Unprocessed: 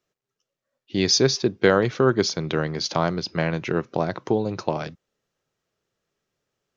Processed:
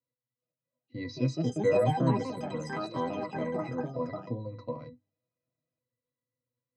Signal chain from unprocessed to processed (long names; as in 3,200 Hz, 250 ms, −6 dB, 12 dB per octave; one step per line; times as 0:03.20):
resonances in every octave B, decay 0.13 s
hum removal 100 Hz, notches 3
delay with pitch and tempo change per echo 416 ms, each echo +4 semitones, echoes 3